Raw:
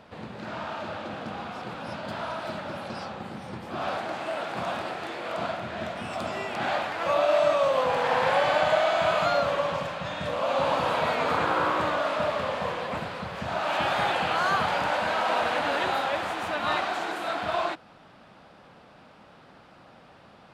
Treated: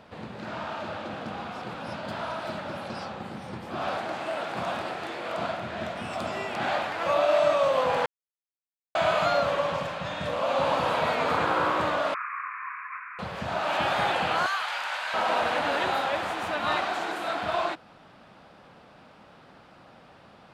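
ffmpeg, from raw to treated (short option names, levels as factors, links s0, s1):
-filter_complex "[0:a]asettb=1/sr,asplit=3[s0][s1][s2];[s0]atrim=end=12.144[s3];[s1]atrim=start=12.14:end=13.19,asetpts=PTS-STARTPTS,afade=t=in:d=0.004:c=qsin,afade=t=out:st=1.046:d=0.004:c=qsin,asuperpass=centerf=1600:order=20:qfactor=1.1[s4];[s2]atrim=start=13.186[s5];[s3][s4]acrossfade=d=0.004:c1=hsin:c2=qsin[s6];[s6][s5]acrossfade=d=0.004:c1=qsin:c2=hsin,asettb=1/sr,asplit=3[s7][s8][s9];[s7]atrim=end=14.464[s10];[s8]atrim=start=14.46:end=15.14,asetpts=PTS-STARTPTS,afade=t=in:d=0.004:c=qsin,afade=t=out:st=0.676:d=0.004:c=qsin,highpass=1300[s11];[s9]atrim=start=15.136[s12];[s10][s11]acrossfade=d=0.004:c1=hsin:c2=qsin[s13];[s13][s12]acrossfade=d=0.004:c1=qsin:c2=hsin,asplit=3[s14][s15][s16];[s14]atrim=end=8.06,asetpts=PTS-STARTPTS,afade=t=out:st=8.056:d=0.004:c=hsin[s17];[s15]atrim=start=8.06:end=8.95,asetpts=PTS-STARTPTS,volume=0[s18];[s16]atrim=start=8.95,asetpts=PTS-STARTPTS,afade=t=in:d=0.004:c=hsin[s19];[s17][s18][s19]concat=n=3:v=0:a=1"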